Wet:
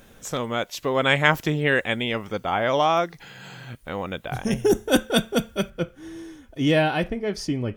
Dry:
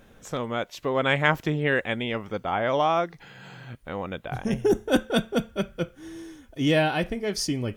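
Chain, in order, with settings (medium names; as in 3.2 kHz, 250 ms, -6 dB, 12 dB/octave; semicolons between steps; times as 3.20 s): treble shelf 4 kHz +9 dB, from 5.70 s -3 dB, from 7.08 s -12 dB; trim +2 dB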